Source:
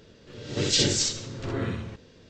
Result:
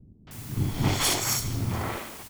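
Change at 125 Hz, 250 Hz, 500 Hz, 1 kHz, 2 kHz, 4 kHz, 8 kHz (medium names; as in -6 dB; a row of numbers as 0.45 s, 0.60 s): +4.0 dB, 0.0 dB, -4.0 dB, +10.0 dB, +2.5 dB, -4.0 dB, -0.5 dB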